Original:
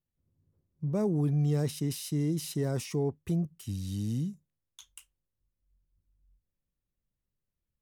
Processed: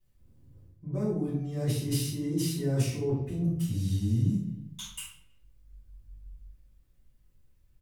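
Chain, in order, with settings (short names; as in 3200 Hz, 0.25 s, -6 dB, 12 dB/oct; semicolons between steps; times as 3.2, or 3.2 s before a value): speakerphone echo 0.32 s, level -30 dB; reverse; compressor 16:1, threshold -41 dBFS, peak gain reduction 18 dB; reverse; bell 74 Hz +3.5 dB 2 oct; shoebox room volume 100 m³, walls mixed, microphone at 3.9 m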